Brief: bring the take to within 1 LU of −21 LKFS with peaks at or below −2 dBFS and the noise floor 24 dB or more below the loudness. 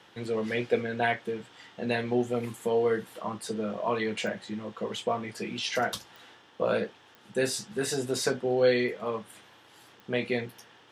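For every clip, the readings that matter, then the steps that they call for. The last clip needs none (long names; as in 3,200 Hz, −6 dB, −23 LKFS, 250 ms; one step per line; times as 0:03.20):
number of clicks 4; integrated loudness −30.5 LKFS; sample peak −12.0 dBFS; target loudness −21.0 LKFS
→ click removal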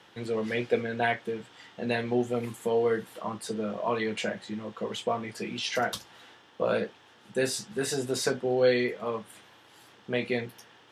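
number of clicks 0; integrated loudness −30.5 LKFS; sample peak −12.0 dBFS; target loudness −21.0 LKFS
→ level +9.5 dB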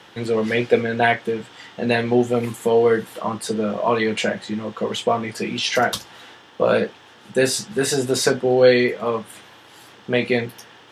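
integrated loudness −21.0 LKFS; sample peak −2.5 dBFS; background noise floor −48 dBFS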